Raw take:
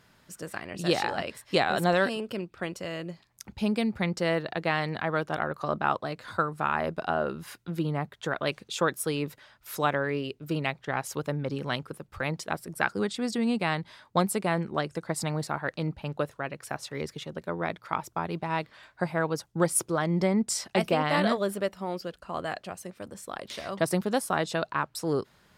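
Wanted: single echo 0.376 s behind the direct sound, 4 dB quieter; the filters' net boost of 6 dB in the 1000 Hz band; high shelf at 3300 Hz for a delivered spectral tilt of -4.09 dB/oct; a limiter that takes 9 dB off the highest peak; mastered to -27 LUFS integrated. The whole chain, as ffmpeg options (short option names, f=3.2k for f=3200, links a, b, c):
-af "equalizer=f=1k:t=o:g=7.5,highshelf=f=3.3k:g=5,alimiter=limit=-13dB:level=0:latency=1,aecho=1:1:376:0.631,volume=0.5dB"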